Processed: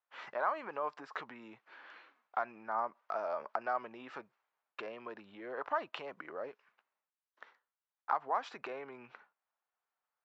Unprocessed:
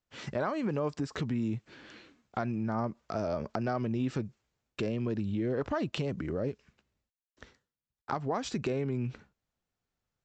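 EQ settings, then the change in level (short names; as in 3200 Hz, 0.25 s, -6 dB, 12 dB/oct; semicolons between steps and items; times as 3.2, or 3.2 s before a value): ladder band-pass 1200 Hz, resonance 30%; +12.0 dB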